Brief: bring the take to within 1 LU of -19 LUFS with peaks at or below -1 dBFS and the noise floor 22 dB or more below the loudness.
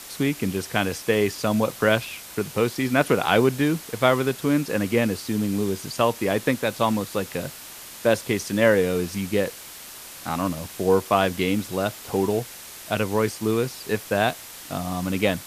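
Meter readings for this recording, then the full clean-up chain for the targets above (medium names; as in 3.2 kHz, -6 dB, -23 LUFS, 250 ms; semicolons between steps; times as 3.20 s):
noise floor -41 dBFS; noise floor target -46 dBFS; loudness -24.0 LUFS; peak level -2.5 dBFS; loudness target -19.0 LUFS
-> noise print and reduce 6 dB; trim +5 dB; peak limiter -1 dBFS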